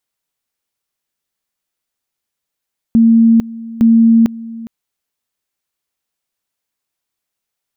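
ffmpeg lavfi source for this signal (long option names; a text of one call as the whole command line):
ffmpeg -f lavfi -i "aevalsrc='pow(10,(-5-19.5*gte(mod(t,0.86),0.45))/20)*sin(2*PI*228*t)':duration=1.72:sample_rate=44100" out.wav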